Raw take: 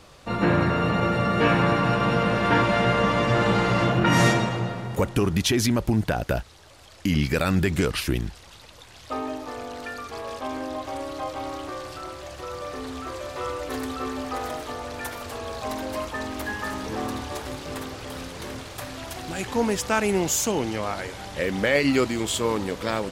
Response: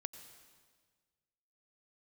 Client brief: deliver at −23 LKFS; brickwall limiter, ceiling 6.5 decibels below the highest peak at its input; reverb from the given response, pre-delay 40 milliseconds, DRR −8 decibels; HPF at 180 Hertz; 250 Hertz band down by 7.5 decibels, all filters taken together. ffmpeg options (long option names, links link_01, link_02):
-filter_complex "[0:a]highpass=180,equalizer=frequency=250:width_type=o:gain=-8.5,alimiter=limit=-15.5dB:level=0:latency=1,asplit=2[link_01][link_02];[1:a]atrim=start_sample=2205,adelay=40[link_03];[link_02][link_03]afir=irnorm=-1:irlink=0,volume=11dB[link_04];[link_01][link_04]amix=inputs=2:normalize=0,volume=-3dB"